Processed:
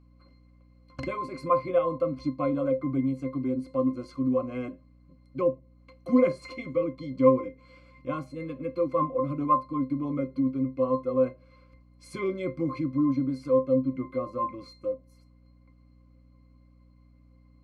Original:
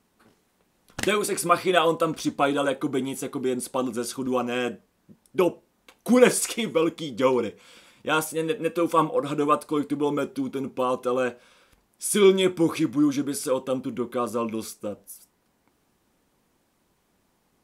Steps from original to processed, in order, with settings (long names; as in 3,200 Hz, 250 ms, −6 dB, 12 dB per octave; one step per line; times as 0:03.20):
high-shelf EQ 10,000 Hz −8 dB
resonances in every octave C, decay 0.16 s
mains hum 60 Hz, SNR 28 dB
one half of a high-frequency compander encoder only
level +7 dB